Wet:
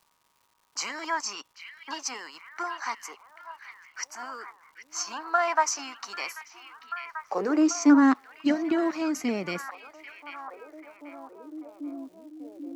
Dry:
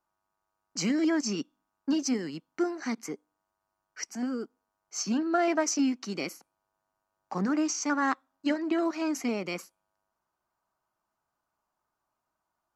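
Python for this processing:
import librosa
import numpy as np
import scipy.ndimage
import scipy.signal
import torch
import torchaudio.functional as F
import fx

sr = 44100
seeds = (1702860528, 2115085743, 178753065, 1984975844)

y = fx.filter_sweep_highpass(x, sr, from_hz=1000.0, to_hz=83.0, start_s=6.57, end_s=9.23, q=4.5)
y = fx.echo_stepped(y, sr, ms=789, hz=2500.0, octaves=-0.7, feedback_pct=70, wet_db=-6.5)
y = fx.dmg_crackle(y, sr, seeds[0], per_s=350.0, level_db=-54.0)
y = F.gain(torch.from_numpy(y), 1.0).numpy()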